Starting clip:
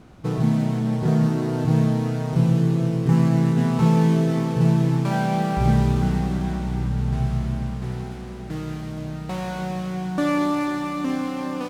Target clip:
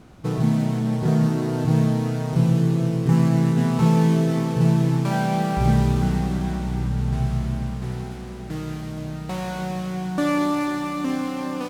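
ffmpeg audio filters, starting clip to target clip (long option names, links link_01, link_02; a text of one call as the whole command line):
ffmpeg -i in.wav -af "highshelf=frequency=5600:gain=4" out.wav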